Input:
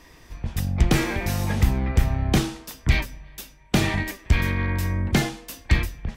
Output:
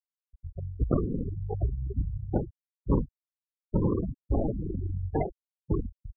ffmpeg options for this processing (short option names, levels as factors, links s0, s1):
-af "flanger=delay=16.5:depth=5.9:speed=1.1,firequalizer=gain_entry='entry(130,0);entry(240,-20);entry(400,0);entry(1500,13)':delay=0.05:min_phase=1,aresample=11025,acrusher=samples=12:mix=1:aa=0.000001:lfo=1:lforange=7.2:lforate=1.1,aresample=44100,afftfilt=real='re*gte(hypot(re,im),0.251)':imag='im*gte(hypot(re,im),0.251)':win_size=1024:overlap=0.75,volume=0.447"